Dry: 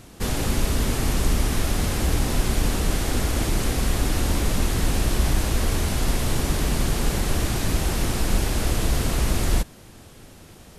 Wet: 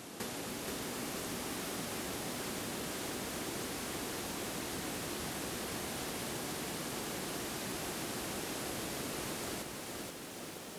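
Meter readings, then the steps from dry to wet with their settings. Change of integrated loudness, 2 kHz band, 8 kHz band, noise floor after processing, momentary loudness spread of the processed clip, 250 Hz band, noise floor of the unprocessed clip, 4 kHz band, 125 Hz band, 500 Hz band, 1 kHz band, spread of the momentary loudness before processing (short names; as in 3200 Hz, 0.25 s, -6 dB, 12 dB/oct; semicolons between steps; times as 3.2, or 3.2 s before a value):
-14.5 dB, -11.0 dB, -11.0 dB, -46 dBFS, 2 LU, -13.5 dB, -46 dBFS, -11.0 dB, -23.5 dB, -11.0 dB, -11.0 dB, 1 LU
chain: HPF 220 Hz 12 dB/oct; compressor 8:1, threshold -40 dBFS, peak gain reduction 15 dB; lo-fi delay 0.477 s, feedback 55%, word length 10-bit, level -3.5 dB; gain +1 dB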